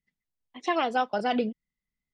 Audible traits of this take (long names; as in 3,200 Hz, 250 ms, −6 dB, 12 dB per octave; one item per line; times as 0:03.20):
background noise floor −90 dBFS
spectral slope −2.0 dB per octave